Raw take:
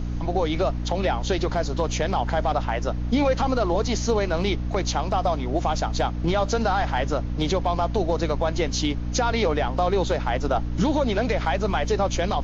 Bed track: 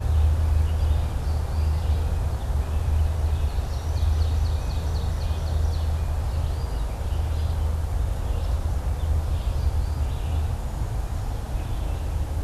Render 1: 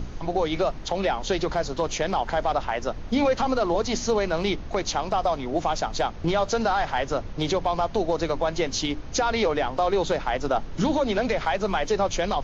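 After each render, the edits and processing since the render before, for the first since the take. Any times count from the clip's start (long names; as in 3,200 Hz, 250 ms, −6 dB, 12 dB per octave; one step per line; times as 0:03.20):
mains-hum notches 60/120/180/240/300 Hz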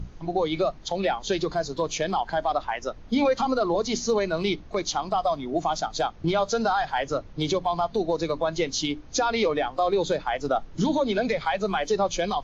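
noise reduction from a noise print 10 dB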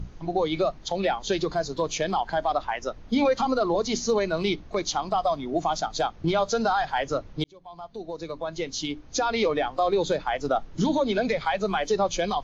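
0:07.44–0:09.52: fade in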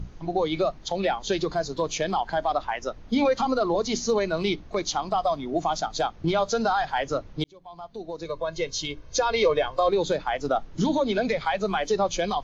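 0:08.25–0:09.89: comb filter 1.9 ms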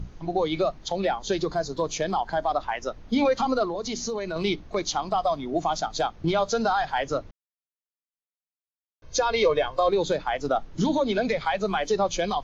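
0:00.95–0:02.63: parametric band 2,700 Hz −4 dB 0.94 octaves
0:03.64–0:04.36: downward compressor 4 to 1, threshold −27 dBFS
0:07.31–0:09.02: silence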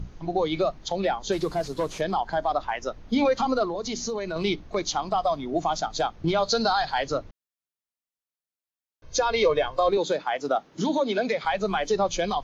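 0:01.32–0:02.01: linear delta modulator 64 kbit/s, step −45 dBFS
0:06.43–0:07.12: parametric band 4,300 Hz +14.5 dB 0.33 octaves
0:09.97–0:11.45: high-pass filter 220 Hz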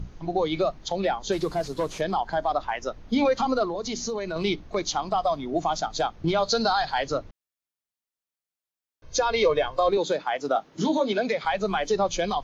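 0:10.53–0:11.13: double-tracking delay 19 ms −8 dB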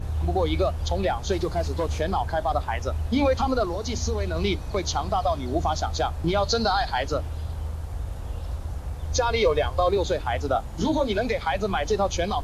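mix in bed track −6.5 dB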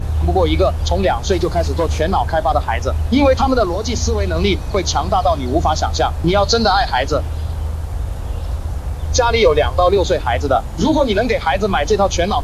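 level +9 dB
brickwall limiter −2 dBFS, peak gain reduction 1 dB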